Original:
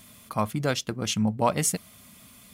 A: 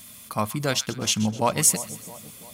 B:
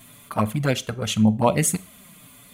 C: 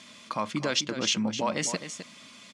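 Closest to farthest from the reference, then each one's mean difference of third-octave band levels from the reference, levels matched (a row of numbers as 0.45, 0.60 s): B, A, C; 3.0, 5.5, 8.0 dB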